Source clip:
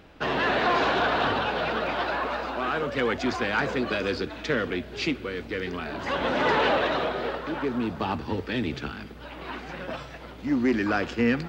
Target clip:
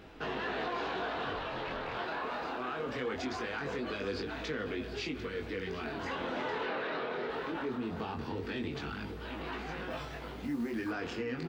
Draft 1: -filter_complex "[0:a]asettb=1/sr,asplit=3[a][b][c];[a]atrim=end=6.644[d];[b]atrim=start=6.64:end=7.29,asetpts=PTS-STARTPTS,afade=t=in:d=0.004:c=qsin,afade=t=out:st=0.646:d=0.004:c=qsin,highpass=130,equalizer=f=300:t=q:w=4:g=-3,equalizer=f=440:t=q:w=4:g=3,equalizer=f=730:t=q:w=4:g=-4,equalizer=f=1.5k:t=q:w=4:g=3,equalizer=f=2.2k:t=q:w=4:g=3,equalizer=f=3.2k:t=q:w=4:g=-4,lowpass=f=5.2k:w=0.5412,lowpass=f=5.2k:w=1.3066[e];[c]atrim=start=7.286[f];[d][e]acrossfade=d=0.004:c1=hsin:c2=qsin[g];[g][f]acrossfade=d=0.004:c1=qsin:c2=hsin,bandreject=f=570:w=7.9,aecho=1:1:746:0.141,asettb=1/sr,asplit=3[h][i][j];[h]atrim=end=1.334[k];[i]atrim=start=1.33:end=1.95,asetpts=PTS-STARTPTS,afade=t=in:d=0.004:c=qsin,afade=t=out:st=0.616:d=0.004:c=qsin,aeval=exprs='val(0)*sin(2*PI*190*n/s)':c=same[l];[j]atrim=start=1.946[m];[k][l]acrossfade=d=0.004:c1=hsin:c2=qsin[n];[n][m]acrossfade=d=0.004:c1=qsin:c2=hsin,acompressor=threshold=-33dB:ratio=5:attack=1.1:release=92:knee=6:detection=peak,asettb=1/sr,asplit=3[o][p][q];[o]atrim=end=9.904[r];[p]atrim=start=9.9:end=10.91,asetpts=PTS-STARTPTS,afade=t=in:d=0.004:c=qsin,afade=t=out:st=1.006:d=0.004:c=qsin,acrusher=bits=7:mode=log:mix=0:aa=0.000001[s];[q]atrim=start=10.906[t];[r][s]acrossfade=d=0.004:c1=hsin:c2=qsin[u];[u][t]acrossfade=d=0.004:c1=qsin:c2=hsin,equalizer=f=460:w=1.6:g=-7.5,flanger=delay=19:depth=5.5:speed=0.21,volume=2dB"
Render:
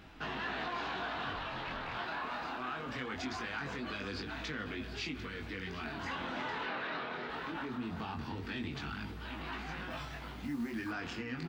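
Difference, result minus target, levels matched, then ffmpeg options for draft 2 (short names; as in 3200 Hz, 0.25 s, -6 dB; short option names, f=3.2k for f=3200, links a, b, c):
500 Hz band -5.5 dB
-filter_complex "[0:a]asettb=1/sr,asplit=3[a][b][c];[a]atrim=end=6.644[d];[b]atrim=start=6.64:end=7.29,asetpts=PTS-STARTPTS,afade=t=in:d=0.004:c=qsin,afade=t=out:st=0.646:d=0.004:c=qsin,highpass=130,equalizer=f=300:t=q:w=4:g=-3,equalizer=f=440:t=q:w=4:g=3,equalizer=f=730:t=q:w=4:g=-4,equalizer=f=1.5k:t=q:w=4:g=3,equalizer=f=2.2k:t=q:w=4:g=3,equalizer=f=3.2k:t=q:w=4:g=-4,lowpass=f=5.2k:w=0.5412,lowpass=f=5.2k:w=1.3066[e];[c]atrim=start=7.286[f];[d][e]acrossfade=d=0.004:c1=hsin:c2=qsin[g];[g][f]acrossfade=d=0.004:c1=qsin:c2=hsin,bandreject=f=570:w=7.9,aecho=1:1:746:0.141,asettb=1/sr,asplit=3[h][i][j];[h]atrim=end=1.334[k];[i]atrim=start=1.33:end=1.95,asetpts=PTS-STARTPTS,afade=t=in:d=0.004:c=qsin,afade=t=out:st=0.616:d=0.004:c=qsin,aeval=exprs='val(0)*sin(2*PI*190*n/s)':c=same[l];[j]atrim=start=1.946[m];[k][l]acrossfade=d=0.004:c1=hsin:c2=qsin[n];[n][m]acrossfade=d=0.004:c1=qsin:c2=hsin,acompressor=threshold=-33dB:ratio=5:attack=1.1:release=92:knee=6:detection=peak,asettb=1/sr,asplit=3[o][p][q];[o]atrim=end=9.904[r];[p]atrim=start=9.9:end=10.91,asetpts=PTS-STARTPTS,afade=t=in:d=0.004:c=qsin,afade=t=out:st=1.006:d=0.004:c=qsin,acrusher=bits=7:mode=log:mix=0:aa=0.000001[s];[q]atrim=start=10.906[t];[r][s]acrossfade=d=0.004:c1=hsin:c2=qsin[u];[u][t]acrossfade=d=0.004:c1=qsin:c2=hsin,equalizer=f=460:w=1.6:g=3,flanger=delay=19:depth=5.5:speed=0.21,volume=2dB"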